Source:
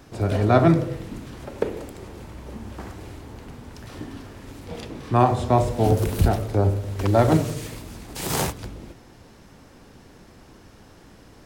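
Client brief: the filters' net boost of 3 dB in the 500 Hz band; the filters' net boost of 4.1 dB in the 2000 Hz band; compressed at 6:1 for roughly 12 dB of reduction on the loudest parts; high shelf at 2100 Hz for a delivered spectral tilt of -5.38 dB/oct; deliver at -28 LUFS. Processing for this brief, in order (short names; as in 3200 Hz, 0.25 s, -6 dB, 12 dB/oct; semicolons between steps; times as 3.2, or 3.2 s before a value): bell 500 Hz +3.5 dB; bell 2000 Hz +3.5 dB; high shelf 2100 Hz +3 dB; compressor 6:1, threshold -23 dBFS; gain +2.5 dB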